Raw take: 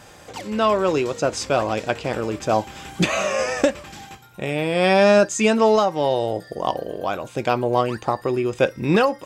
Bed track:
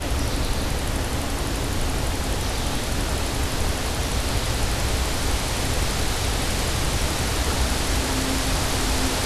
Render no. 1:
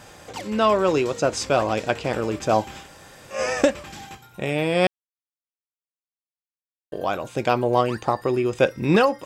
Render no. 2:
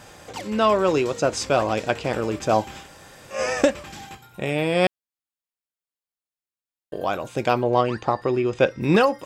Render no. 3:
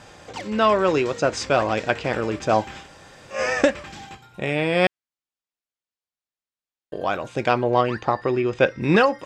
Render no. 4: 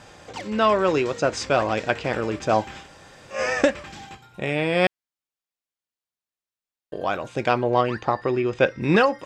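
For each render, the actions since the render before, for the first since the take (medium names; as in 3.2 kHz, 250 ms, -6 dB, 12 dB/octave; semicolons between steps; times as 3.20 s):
2.83–3.37 s: room tone, crossfade 0.16 s; 4.87–6.92 s: mute
4.09–7.07 s: band-stop 5.9 kHz; 7.61–8.81 s: low-pass 5.5 kHz
low-pass 6.9 kHz 12 dB/octave; dynamic bell 1.8 kHz, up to +5 dB, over -41 dBFS, Q 1.7
trim -1 dB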